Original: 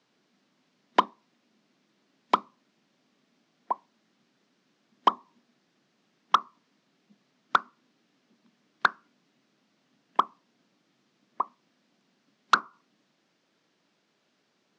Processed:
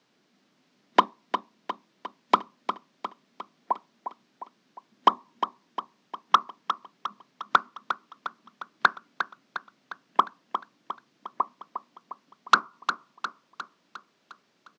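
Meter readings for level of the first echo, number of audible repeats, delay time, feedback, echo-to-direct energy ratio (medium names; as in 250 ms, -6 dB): -9.0 dB, 5, 355 ms, 54%, -7.5 dB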